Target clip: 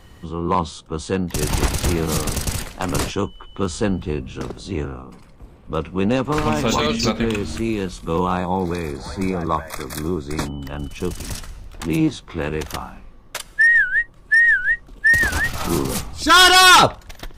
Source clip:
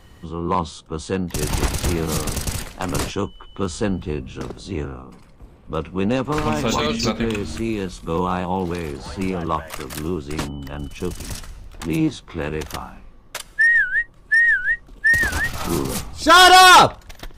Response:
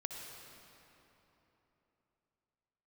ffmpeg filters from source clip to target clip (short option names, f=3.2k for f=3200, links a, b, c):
-filter_complex "[0:a]asettb=1/sr,asplit=3[a][b][c];[a]atrim=end=8.374[d];[b]atrim=start=8.37:end=10.46,asetpts=PTS-STARTPTS,afade=t=in:d=0.004:c=qsin,afade=t=out:st=2.086:d=0.004:c=qsin,asuperstop=centerf=2900:order=20:qfactor=4[e];[c]atrim=start=10.456[f];[d][e]acrossfade=d=0.004:c1=hsin:c2=qsin[g];[g][f]acrossfade=d=0.004:c1=qsin:c2=hsin,asettb=1/sr,asplit=3[h][i][j];[h]atrim=end=16.234[k];[i]atrim=start=16.23:end=16.83,asetpts=PTS-STARTPTS,afade=t=in:d=0.004:c=qsin,afade=t=out:st=0.596:d=0.004:c=qsin,equalizer=f=610:w=1.3:g=-11[l];[j]atrim=start=16.826[m];[k][l]acrossfade=d=0.004:c1=hsin:c2=qsin[n];[n][m]acrossfade=d=0.004:c1=qsin:c2=hsin,volume=1.5dB"